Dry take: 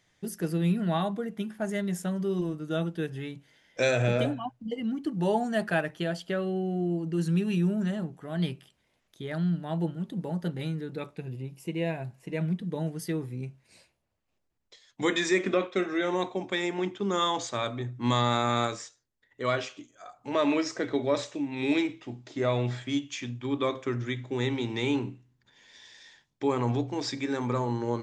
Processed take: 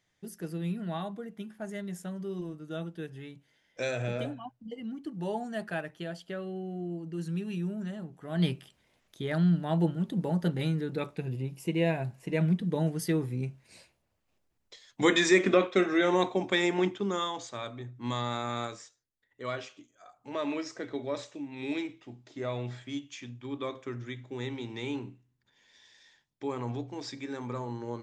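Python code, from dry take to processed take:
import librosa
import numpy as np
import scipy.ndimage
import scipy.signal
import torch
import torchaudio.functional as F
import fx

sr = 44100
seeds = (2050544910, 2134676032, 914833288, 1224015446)

y = fx.gain(x, sr, db=fx.line((8.04, -7.5), (8.47, 3.0), (16.85, 3.0), (17.32, -7.5)))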